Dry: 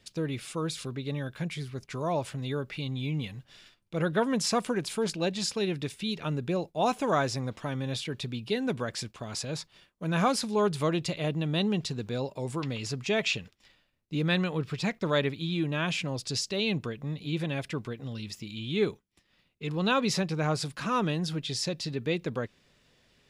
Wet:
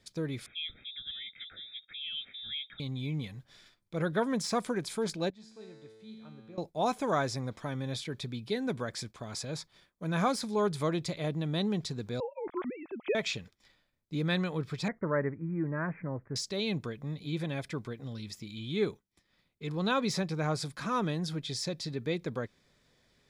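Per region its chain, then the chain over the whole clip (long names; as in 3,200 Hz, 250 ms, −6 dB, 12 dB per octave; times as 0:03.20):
0:00.46–0:02.80: phaser with its sweep stopped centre 740 Hz, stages 6 + voice inversion scrambler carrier 3,700 Hz
0:05.30–0:06.58: low-pass filter 2,400 Hz 6 dB per octave + tuned comb filter 110 Hz, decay 1.8 s, mix 90%
0:12.20–0:13.15: three sine waves on the formant tracks + high-frequency loss of the air 210 metres
0:14.88–0:16.36: Butterworth low-pass 2,000 Hz 72 dB per octave + notch filter 740 Hz, Q 13
whole clip: notch filter 2,800 Hz, Q 5.3; de-essing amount 60%; level −3 dB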